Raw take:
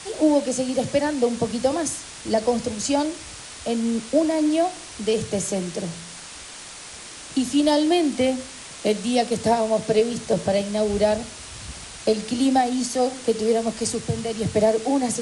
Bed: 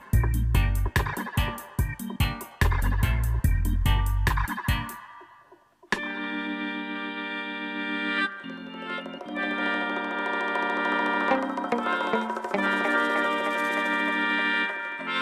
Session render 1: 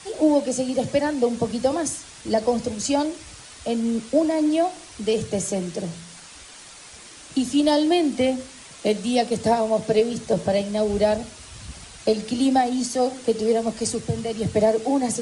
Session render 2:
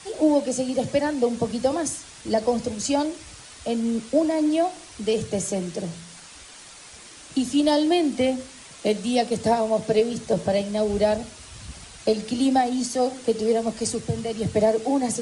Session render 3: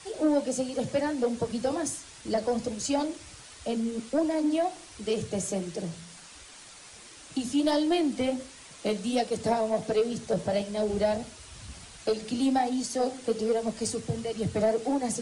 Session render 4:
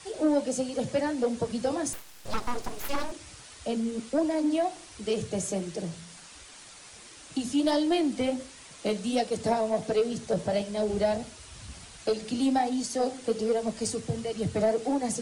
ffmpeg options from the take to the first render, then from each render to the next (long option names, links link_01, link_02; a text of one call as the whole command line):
ffmpeg -i in.wav -af "afftdn=noise_reduction=6:noise_floor=-39" out.wav
ffmpeg -i in.wav -af "volume=-1dB" out.wav
ffmpeg -i in.wav -af "asoftclip=type=tanh:threshold=-13dB,flanger=delay=2:depth=8.9:regen=-56:speed=1.4:shape=sinusoidal" out.wav
ffmpeg -i in.wav -filter_complex "[0:a]asettb=1/sr,asplit=3[link_01][link_02][link_03];[link_01]atrim=end=1.934[link_04];[link_02]atrim=start=1.93:end=3.12,asetpts=PTS-STARTPTS,afade=type=in:duration=0.004:curve=qsin,afade=type=out:start_time=1.186:duration=0.004:curve=qsin,aeval=exprs='abs(val(0))':channel_layout=same[link_05];[link_03]atrim=start=3.116[link_06];[link_04][link_05]acrossfade=duration=0.004:curve1=hsin:curve2=qsin[link_07];[link_07][link_06]acrossfade=duration=0.004:curve1=qsin:curve2=hsin" out.wav